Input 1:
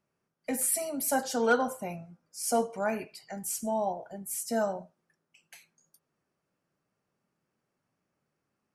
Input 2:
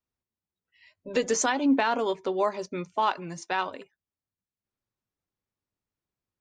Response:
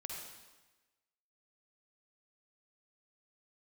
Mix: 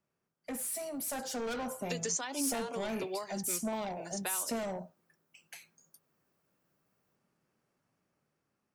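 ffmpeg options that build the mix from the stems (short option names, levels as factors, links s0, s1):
-filter_complex "[0:a]acontrast=69,asoftclip=type=tanh:threshold=0.0596,dynaudnorm=f=670:g=5:m=2,volume=0.316,asplit=2[s0][s1];[1:a]aemphasis=mode=production:type=bsi,acompressor=threshold=0.0501:ratio=6,adelay=750,volume=0.562[s2];[s1]apad=whole_len=315487[s3];[s2][s3]sidechaincompress=threshold=0.0224:ratio=8:attack=16:release=509[s4];[s0][s4]amix=inputs=2:normalize=0,acrossover=split=330|3000[s5][s6][s7];[s6]acompressor=threshold=0.0158:ratio=6[s8];[s5][s8][s7]amix=inputs=3:normalize=0"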